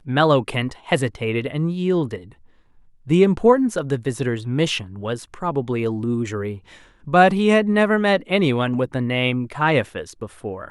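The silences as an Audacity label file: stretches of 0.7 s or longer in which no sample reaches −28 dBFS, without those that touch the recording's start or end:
2.180000	3.090000	silence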